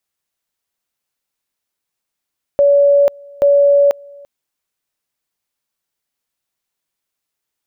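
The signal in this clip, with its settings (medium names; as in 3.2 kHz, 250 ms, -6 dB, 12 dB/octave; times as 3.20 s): two-level tone 568 Hz -7 dBFS, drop 27.5 dB, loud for 0.49 s, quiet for 0.34 s, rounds 2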